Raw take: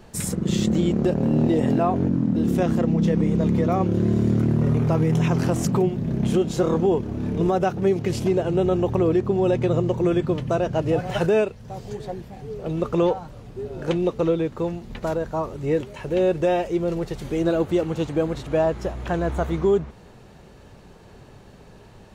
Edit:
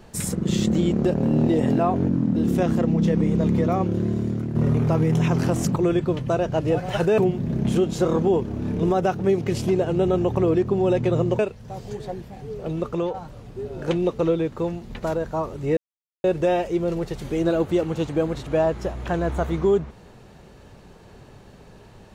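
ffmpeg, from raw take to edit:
-filter_complex "[0:a]asplit=8[s0][s1][s2][s3][s4][s5][s6][s7];[s0]atrim=end=4.55,asetpts=PTS-STARTPTS,afade=t=out:st=3.63:d=0.92:silence=0.354813[s8];[s1]atrim=start=4.55:end=5.762,asetpts=PTS-STARTPTS,afade=t=in:d=0.004:c=hsin:silence=0.354813[s9];[s2]atrim=start=9.968:end=11.392[s10];[s3]atrim=start=5.758:end=9.972[s11];[s4]atrim=start=11.388:end=13.14,asetpts=PTS-STARTPTS,afade=t=out:st=1.242:d=0.51:silence=0.398107[s12];[s5]atrim=start=13.14:end=15.77,asetpts=PTS-STARTPTS,afade=t=in:d=0.004:c=hsin:silence=0.398107,afade=t=out:st=2.626:d=0.004:c=hsin[s13];[s6]atrim=start=15.77:end=16.24,asetpts=PTS-STARTPTS,volume=0[s14];[s7]atrim=start=16.24,asetpts=PTS-STARTPTS,afade=t=in:d=0.004:c=hsin[s15];[s8][s9]concat=n=2:v=0:a=1[s16];[s16][s10]acrossfade=d=0.004:c1=hsin:c2=hsin[s17];[s17][s11]acrossfade=d=0.004:c1=hsin:c2=hsin[s18];[s12][s13][s14][s15]concat=n=4:v=0:a=1[s19];[s18][s19]acrossfade=d=0.004:c1=hsin:c2=hsin"

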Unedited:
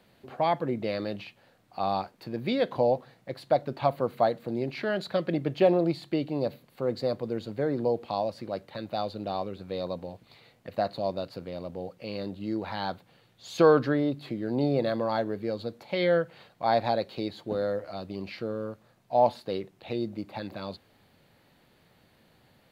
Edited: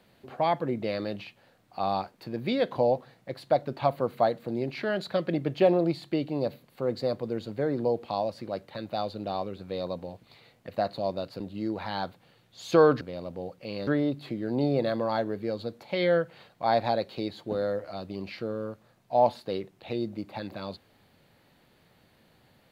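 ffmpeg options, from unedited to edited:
-filter_complex "[0:a]asplit=4[s0][s1][s2][s3];[s0]atrim=end=11.402[s4];[s1]atrim=start=12.258:end=13.872[s5];[s2]atrim=start=11.398:end=12.262[s6];[s3]atrim=start=13.868[s7];[s4][s5]acrossfade=d=0.004:c1=hsin:c2=hsin[s8];[s8][s6]acrossfade=d=0.004:c1=hsin:c2=hsin[s9];[s9][s7]acrossfade=d=0.004:c1=hsin:c2=hsin"

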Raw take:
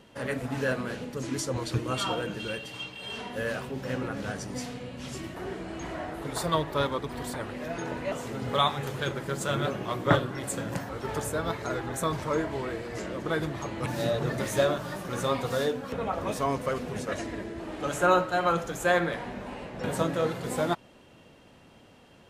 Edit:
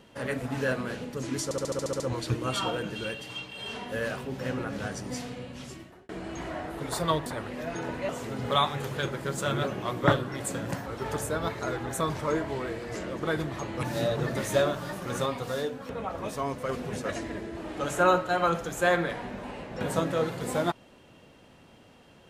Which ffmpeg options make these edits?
-filter_complex "[0:a]asplit=13[s0][s1][s2][s3][s4][s5][s6][s7][s8][s9][s10][s11][s12];[s0]atrim=end=1.512[s13];[s1]atrim=start=1.438:end=1.512[s14];[s2]atrim=start=1.438:end=1.512[s15];[s3]atrim=start=1.438:end=1.512[s16];[s4]atrim=start=1.438:end=1.512[s17];[s5]atrim=start=1.438:end=1.512[s18];[s6]atrim=start=1.438:end=1.512[s19];[s7]atrim=start=1.438:end=1.512[s20];[s8]atrim=start=1.438:end=5.53,asetpts=PTS-STARTPTS,afade=t=out:st=3.412:d=0.68[s21];[s9]atrim=start=5.53:end=6.702,asetpts=PTS-STARTPTS,afade=t=in:d=0.004:c=hsin[s22];[s10]atrim=start=7.288:end=15.292[s23];[s11]atrim=start=15.288:end=16.722,asetpts=PTS-STARTPTS,volume=0.668[s24];[s12]atrim=start=16.718[s25];[s13][s14]acrossfade=d=0.004:c1=hsin:c2=hsin[s26];[s26][s15]acrossfade=d=0.004:c1=hsin:c2=hsin[s27];[s27][s16]acrossfade=d=0.004:c1=hsin:c2=hsin[s28];[s28][s17]acrossfade=d=0.004:c1=hsin:c2=hsin[s29];[s29][s18]acrossfade=d=0.004:c1=hsin:c2=hsin[s30];[s30][s19]acrossfade=d=0.004:c1=hsin:c2=hsin[s31];[s31][s20]acrossfade=d=0.004:c1=hsin:c2=hsin[s32];[s21][s22]concat=n=2:v=0:a=1[s33];[s32][s33]acrossfade=d=0.004:c1=hsin:c2=hsin[s34];[s34][s23]acrossfade=d=0.004:c1=hsin:c2=hsin[s35];[s35][s24]acrossfade=d=0.004:c1=hsin:c2=hsin[s36];[s36][s25]acrossfade=d=0.004:c1=hsin:c2=hsin"

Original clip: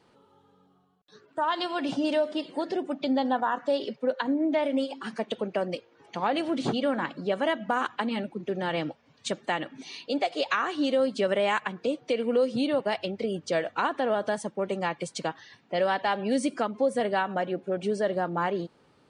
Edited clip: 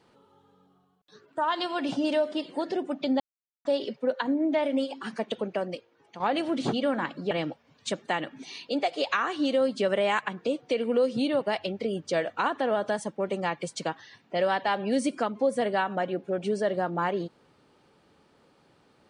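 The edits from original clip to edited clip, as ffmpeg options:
-filter_complex "[0:a]asplit=5[s0][s1][s2][s3][s4];[s0]atrim=end=3.2,asetpts=PTS-STARTPTS,afade=t=out:st=3.196:d=0.004:c=hsin[s5];[s1]atrim=start=3.2:end=3.65,asetpts=PTS-STARTPTS,volume=0[s6];[s2]atrim=start=3.65:end=6.2,asetpts=PTS-STARTPTS,afade=t=in:d=0.004:c=hsin,afade=t=out:st=1.74:d=0.81:silence=0.334965[s7];[s3]atrim=start=6.2:end=7.312,asetpts=PTS-STARTPTS,afade=t=in:d=0.004:c=hsin:silence=0.334965[s8];[s4]atrim=start=8.698[s9];[s5][s6][s7][s8]concat=n=4:v=0:a=1[s10];[s10][s9]acrossfade=d=0.004:c1=hsin:c2=hsin"

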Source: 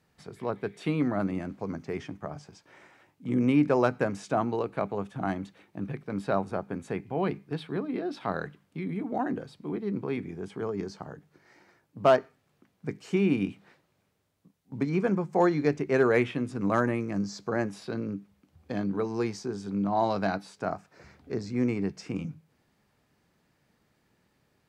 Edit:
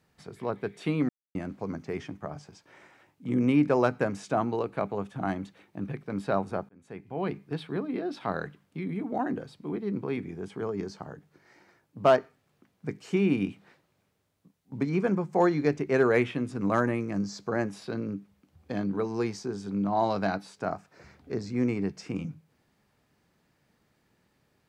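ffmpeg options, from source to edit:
-filter_complex "[0:a]asplit=4[s0][s1][s2][s3];[s0]atrim=end=1.09,asetpts=PTS-STARTPTS,afade=t=out:st=1.086:d=0.004:c=hsin[s4];[s1]atrim=start=1.09:end=1.35,asetpts=PTS-STARTPTS,volume=0[s5];[s2]atrim=start=1.35:end=6.69,asetpts=PTS-STARTPTS,afade=t=in:d=0.004:c=hsin,afade=t=out:st=5.336:d=0.004:c=hsin[s6];[s3]atrim=start=6.69,asetpts=PTS-STARTPTS,afade=t=in:d=0.74[s7];[s4][s5][s6][s7]concat=n=4:v=0:a=1"

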